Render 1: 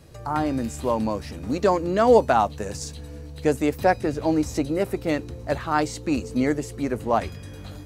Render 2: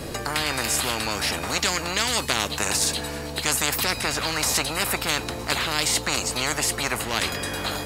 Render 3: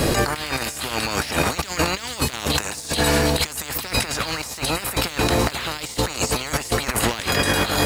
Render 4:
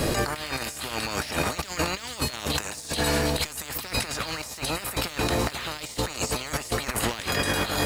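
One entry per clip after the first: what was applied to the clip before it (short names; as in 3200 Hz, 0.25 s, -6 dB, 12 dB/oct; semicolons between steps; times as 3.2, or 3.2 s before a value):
notch 6000 Hz, Q 12; spectral compressor 10:1
negative-ratio compressor -31 dBFS, ratio -0.5; bit-crush 9-bit; gain +8.5 dB
resonator 610 Hz, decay 0.44 s, mix 60%; gain +2 dB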